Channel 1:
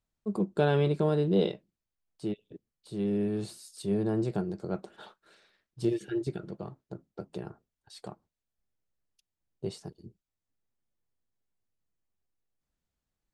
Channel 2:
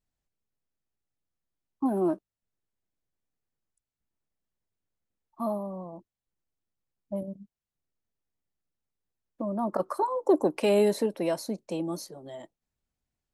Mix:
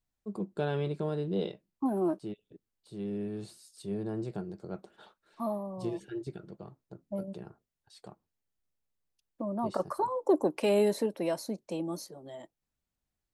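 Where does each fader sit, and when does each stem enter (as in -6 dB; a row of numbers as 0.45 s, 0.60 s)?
-6.5 dB, -3.0 dB; 0.00 s, 0.00 s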